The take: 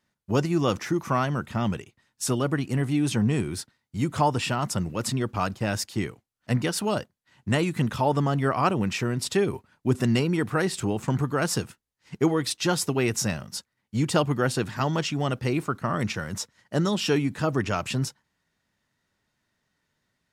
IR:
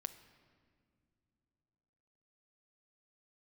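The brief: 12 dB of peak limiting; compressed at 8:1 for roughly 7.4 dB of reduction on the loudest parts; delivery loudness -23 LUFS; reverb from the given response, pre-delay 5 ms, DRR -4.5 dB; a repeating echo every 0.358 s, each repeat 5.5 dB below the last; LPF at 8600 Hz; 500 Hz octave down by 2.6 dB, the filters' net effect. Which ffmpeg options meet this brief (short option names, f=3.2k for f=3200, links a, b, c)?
-filter_complex "[0:a]lowpass=8.6k,equalizer=f=500:t=o:g=-3.5,acompressor=threshold=-26dB:ratio=8,alimiter=level_in=3dB:limit=-24dB:level=0:latency=1,volume=-3dB,aecho=1:1:358|716|1074|1432|1790|2148|2506:0.531|0.281|0.149|0.079|0.0419|0.0222|0.0118,asplit=2[a][b];[1:a]atrim=start_sample=2205,adelay=5[c];[b][c]afir=irnorm=-1:irlink=0,volume=7.5dB[d];[a][d]amix=inputs=2:normalize=0,volume=6dB"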